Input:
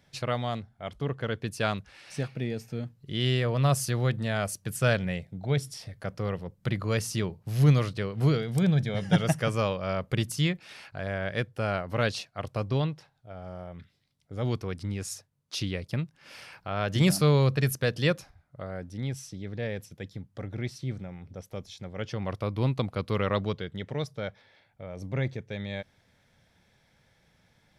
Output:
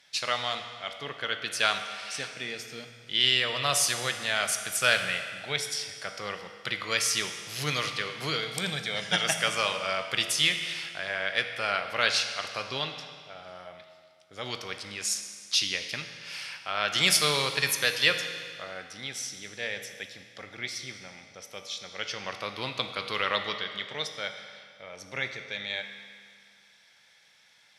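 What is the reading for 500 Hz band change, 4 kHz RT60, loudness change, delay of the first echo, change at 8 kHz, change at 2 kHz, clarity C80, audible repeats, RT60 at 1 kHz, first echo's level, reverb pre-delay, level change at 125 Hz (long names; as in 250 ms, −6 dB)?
−4.5 dB, 1.9 s, +1.0 dB, no echo audible, +9.0 dB, +7.5 dB, 8.5 dB, no echo audible, 2.1 s, no echo audible, 14 ms, −16.5 dB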